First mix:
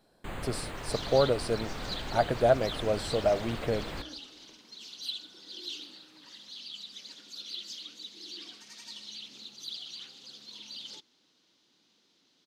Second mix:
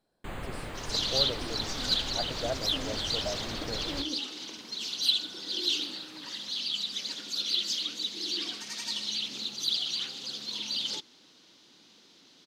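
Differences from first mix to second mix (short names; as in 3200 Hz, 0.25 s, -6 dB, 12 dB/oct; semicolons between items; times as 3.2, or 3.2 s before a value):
speech -11.0 dB; second sound +11.0 dB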